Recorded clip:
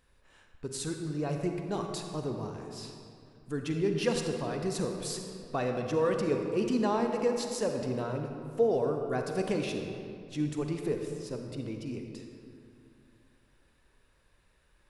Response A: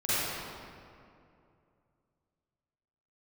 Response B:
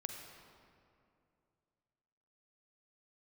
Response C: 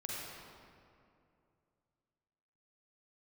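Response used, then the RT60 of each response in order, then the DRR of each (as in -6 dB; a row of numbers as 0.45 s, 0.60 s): B; 2.5 s, 2.5 s, 2.5 s; -14.5 dB, 3.5 dB, -5.0 dB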